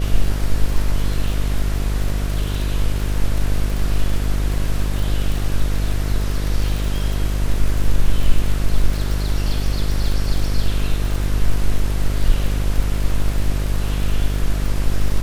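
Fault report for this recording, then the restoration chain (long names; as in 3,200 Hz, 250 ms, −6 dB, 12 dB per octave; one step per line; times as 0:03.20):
mains buzz 50 Hz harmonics 14 −21 dBFS
surface crackle 49 per second −23 dBFS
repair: click removal
hum removal 50 Hz, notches 14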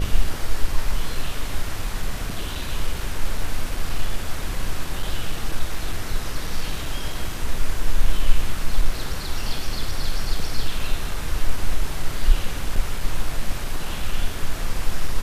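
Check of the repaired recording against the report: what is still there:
none of them is left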